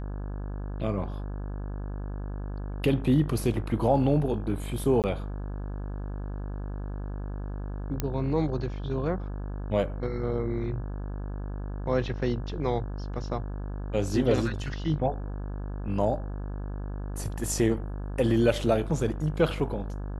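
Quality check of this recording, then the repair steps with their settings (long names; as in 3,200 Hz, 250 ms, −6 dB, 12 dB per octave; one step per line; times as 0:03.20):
mains buzz 50 Hz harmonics 34 −34 dBFS
0:05.02–0:05.04: drop-out 18 ms
0:08.00: click −13 dBFS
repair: click removal
hum removal 50 Hz, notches 34
repair the gap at 0:05.02, 18 ms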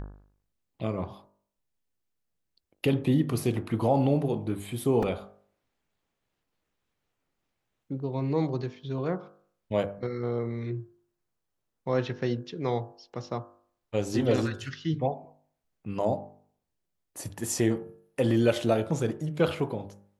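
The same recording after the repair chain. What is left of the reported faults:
none of them is left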